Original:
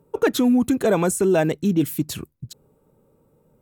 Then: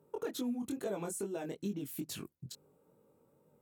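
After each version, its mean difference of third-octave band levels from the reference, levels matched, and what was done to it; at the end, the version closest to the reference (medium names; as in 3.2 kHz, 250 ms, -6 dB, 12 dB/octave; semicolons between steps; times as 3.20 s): 4.0 dB: high-pass 220 Hz 6 dB/octave; dynamic bell 1.7 kHz, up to -5 dB, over -37 dBFS, Q 0.94; compression, threshold -30 dBFS, peak gain reduction 14 dB; chorus 2.3 Hz, delay 19.5 ms, depth 4.5 ms; trim -3 dB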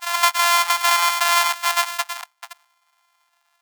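22.5 dB: sorted samples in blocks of 128 samples; steep high-pass 750 Hz 72 dB/octave; gate -57 dBFS, range -6 dB; on a send: reverse echo 326 ms -6.5 dB; on the sum: trim +6 dB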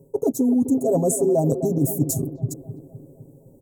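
9.5 dB: Chebyshev band-stop 670–6700 Hz, order 3; comb 7.4 ms, depth 90%; reverse; compression, threshold -24 dBFS, peak gain reduction 12.5 dB; reverse; bucket-brigade echo 256 ms, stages 4096, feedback 56%, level -11 dB; trim +6.5 dB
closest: first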